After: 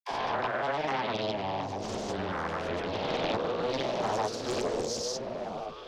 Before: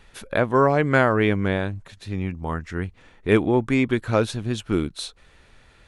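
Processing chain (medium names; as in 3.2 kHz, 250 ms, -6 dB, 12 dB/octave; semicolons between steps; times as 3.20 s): reverse spectral sustain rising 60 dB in 1.65 s; FFT filter 150 Hz 0 dB, 740 Hz +8 dB, 1.4 kHz -2 dB, 3.4 kHz +9 dB, 6.7 kHz -7 dB; compression 2.5:1, threshold -24 dBFS, peak gain reduction 12 dB; phase dispersion lows, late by 70 ms, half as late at 350 Hz; formant shift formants +6 st; granulator, pitch spread up and down by 0 st; on a send: repeats whose band climbs or falls 709 ms, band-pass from 190 Hz, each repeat 1.4 oct, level -1 dB; on the sum: loudspeaker Doppler distortion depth 0.65 ms; trim -6.5 dB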